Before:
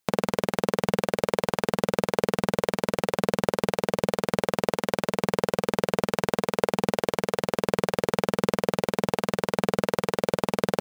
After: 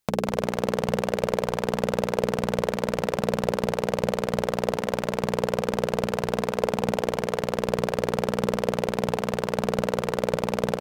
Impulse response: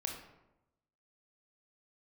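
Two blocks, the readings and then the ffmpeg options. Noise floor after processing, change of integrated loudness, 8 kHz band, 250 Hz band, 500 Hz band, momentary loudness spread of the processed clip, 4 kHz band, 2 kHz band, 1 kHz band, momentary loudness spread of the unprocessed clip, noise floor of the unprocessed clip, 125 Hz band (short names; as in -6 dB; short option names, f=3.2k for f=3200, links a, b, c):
-35 dBFS, 0.0 dB, -1.5 dB, 0.0 dB, +0.5 dB, 1 LU, -1.5 dB, -1.5 dB, -0.5 dB, 1 LU, -71 dBFS, +1.0 dB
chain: -filter_complex "[0:a]lowshelf=f=120:g=9.5,bandreject=f=60:t=h:w=6,bandreject=f=120:t=h:w=6,bandreject=f=180:t=h:w=6,bandreject=f=240:t=h:w=6,bandreject=f=300:t=h:w=6,bandreject=f=360:t=h:w=6,bandreject=f=420:t=h:w=6,volume=9.5dB,asoftclip=hard,volume=-9.5dB,asplit=2[a][b];[b]adelay=184,lowpass=f=3.5k:p=1,volume=-13dB,asplit=2[c][d];[d]adelay=184,lowpass=f=3.5k:p=1,volume=0.5,asplit=2[e][f];[f]adelay=184,lowpass=f=3.5k:p=1,volume=0.5,asplit=2[g][h];[h]adelay=184,lowpass=f=3.5k:p=1,volume=0.5,asplit=2[i][j];[j]adelay=184,lowpass=f=3.5k:p=1,volume=0.5[k];[c][e][g][i][k]amix=inputs=5:normalize=0[l];[a][l]amix=inputs=2:normalize=0"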